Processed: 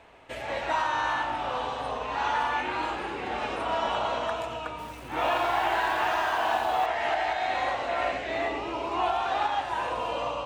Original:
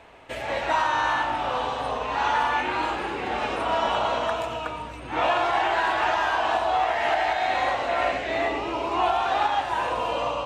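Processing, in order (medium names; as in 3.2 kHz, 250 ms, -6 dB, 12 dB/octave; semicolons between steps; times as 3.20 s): 4.70–6.86 s: bit-crushed delay 87 ms, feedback 55%, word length 7-bit, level -6 dB; trim -4 dB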